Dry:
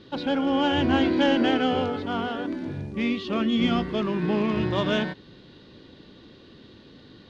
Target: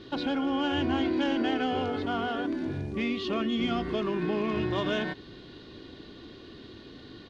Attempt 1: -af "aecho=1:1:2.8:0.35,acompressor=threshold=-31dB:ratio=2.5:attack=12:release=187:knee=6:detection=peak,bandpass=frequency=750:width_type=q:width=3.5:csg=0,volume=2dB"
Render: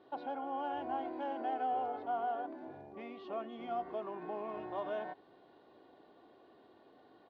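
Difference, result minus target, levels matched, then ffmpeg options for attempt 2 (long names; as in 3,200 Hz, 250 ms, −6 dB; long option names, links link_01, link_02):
1,000 Hz band +8.0 dB
-af "aecho=1:1:2.8:0.35,acompressor=threshold=-31dB:ratio=2.5:attack=12:release=187:knee=6:detection=peak,volume=2dB"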